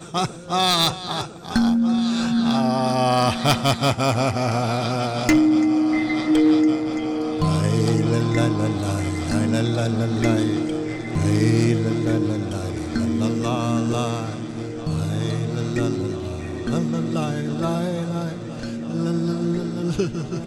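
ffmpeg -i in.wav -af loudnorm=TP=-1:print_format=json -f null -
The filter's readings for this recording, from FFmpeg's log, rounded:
"input_i" : "-22.0",
"input_tp" : "-5.1",
"input_lra" : "5.8",
"input_thresh" : "-32.0",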